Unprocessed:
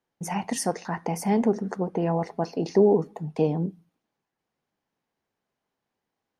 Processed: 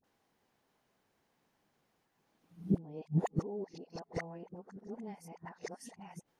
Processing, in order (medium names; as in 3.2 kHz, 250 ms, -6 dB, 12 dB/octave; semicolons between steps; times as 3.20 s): reverse the whole clip; inverted gate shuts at -24 dBFS, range -29 dB; phase dispersion highs, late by 40 ms, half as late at 670 Hz; trim +6.5 dB